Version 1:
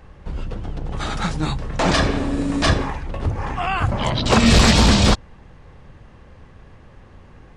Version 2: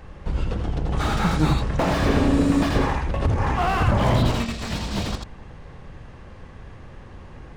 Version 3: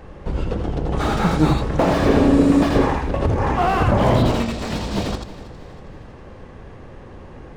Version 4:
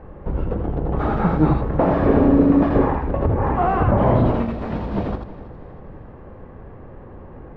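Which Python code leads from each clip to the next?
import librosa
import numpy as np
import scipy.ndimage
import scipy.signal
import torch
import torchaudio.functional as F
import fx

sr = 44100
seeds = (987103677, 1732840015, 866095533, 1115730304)

y1 = fx.over_compress(x, sr, threshold_db=-19.0, ratio=-0.5)
y1 = y1 + 10.0 ** (-6.5 / 20.0) * np.pad(y1, (int(83 * sr / 1000.0), 0))[:len(y1)]
y1 = fx.slew_limit(y1, sr, full_power_hz=98.0)
y2 = fx.peak_eq(y1, sr, hz=420.0, db=7.0, octaves=2.2)
y2 = fx.echo_feedback(y2, sr, ms=320, feedback_pct=47, wet_db=-17.5)
y3 = scipy.signal.sosfilt(scipy.signal.butter(2, 1400.0, 'lowpass', fs=sr, output='sos'), y2)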